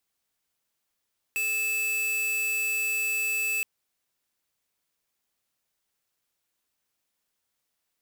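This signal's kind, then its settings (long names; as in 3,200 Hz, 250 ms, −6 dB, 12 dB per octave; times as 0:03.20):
tone square 2,620 Hz −27.5 dBFS 2.27 s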